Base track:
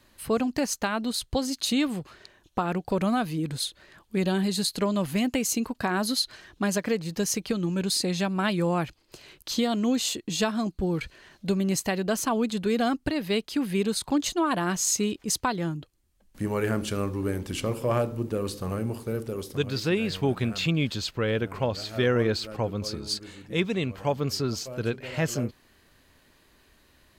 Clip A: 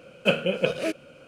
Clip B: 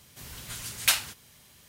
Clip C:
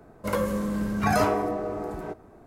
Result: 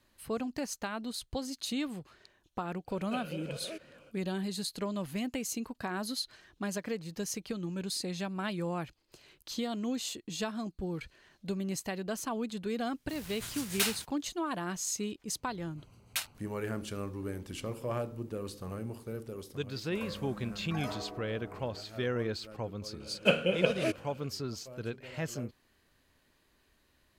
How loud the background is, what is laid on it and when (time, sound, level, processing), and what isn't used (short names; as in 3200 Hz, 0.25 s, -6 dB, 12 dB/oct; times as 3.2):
base track -9.5 dB
2.86 add A -8 dB, fades 0.05 s + compressor 2:1, threshold -36 dBFS
12.92 add B -14 dB + sample leveller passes 3
15.28 add B -11.5 dB + Wiener smoothing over 25 samples
19.68 add C -17.5 dB
23 add A -3.5 dB